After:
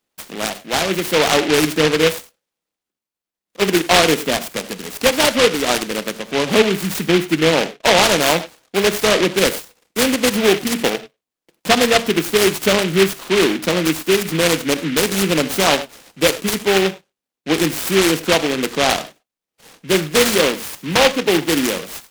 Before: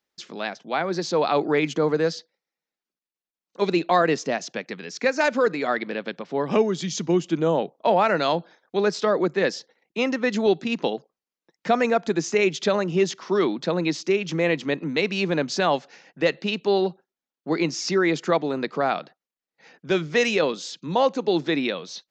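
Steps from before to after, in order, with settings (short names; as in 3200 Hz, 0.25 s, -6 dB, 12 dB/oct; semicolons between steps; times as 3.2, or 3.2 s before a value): 8.26–10.69 bell 3200 Hz +4.5 dB 0.76 oct; non-linear reverb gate 0.12 s flat, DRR 11 dB; noise-modulated delay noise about 2200 Hz, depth 0.17 ms; gain +6 dB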